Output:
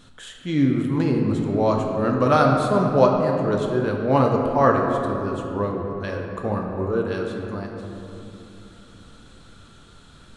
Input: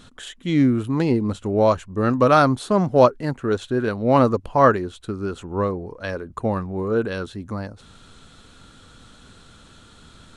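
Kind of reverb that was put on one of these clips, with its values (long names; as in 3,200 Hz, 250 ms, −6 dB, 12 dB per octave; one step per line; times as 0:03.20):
rectangular room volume 130 cubic metres, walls hard, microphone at 0.38 metres
level −4 dB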